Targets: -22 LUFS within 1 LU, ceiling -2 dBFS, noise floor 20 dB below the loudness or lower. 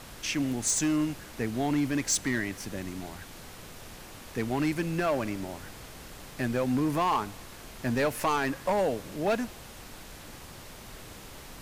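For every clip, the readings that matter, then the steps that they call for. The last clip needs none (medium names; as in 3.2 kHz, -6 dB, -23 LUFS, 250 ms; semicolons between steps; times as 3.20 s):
clipped samples 1.1%; clipping level -21.0 dBFS; noise floor -47 dBFS; noise floor target -50 dBFS; loudness -29.5 LUFS; peak level -21.0 dBFS; loudness target -22.0 LUFS
-> clip repair -21 dBFS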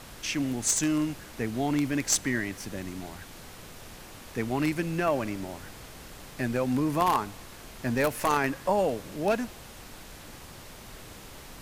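clipped samples 0.0%; noise floor -47 dBFS; noise floor target -49 dBFS
-> noise print and reduce 6 dB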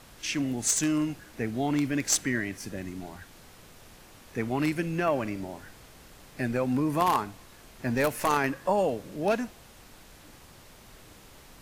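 noise floor -52 dBFS; loudness -28.5 LUFS; peak level -12.0 dBFS; loudness target -22.0 LUFS
-> trim +6.5 dB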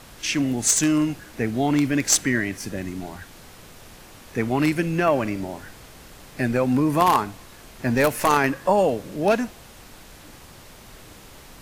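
loudness -22.0 LUFS; peak level -5.5 dBFS; noise floor -46 dBFS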